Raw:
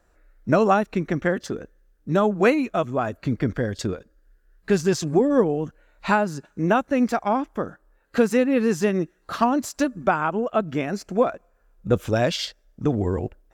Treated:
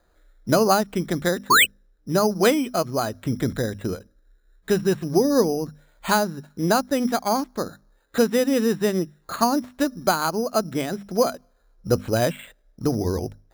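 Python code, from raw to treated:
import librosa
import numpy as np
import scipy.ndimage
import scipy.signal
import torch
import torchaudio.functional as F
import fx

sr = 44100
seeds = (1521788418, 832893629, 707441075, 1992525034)

y = fx.hum_notches(x, sr, base_hz=50, count=5)
y = fx.spec_paint(y, sr, seeds[0], shape='rise', start_s=1.5, length_s=0.21, low_hz=920.0, high_hz=4400.0, level_db=-14.0)
y = np.repeat(scipy.signal.resample_poly(y, 1, 8), 8)[:len(y)]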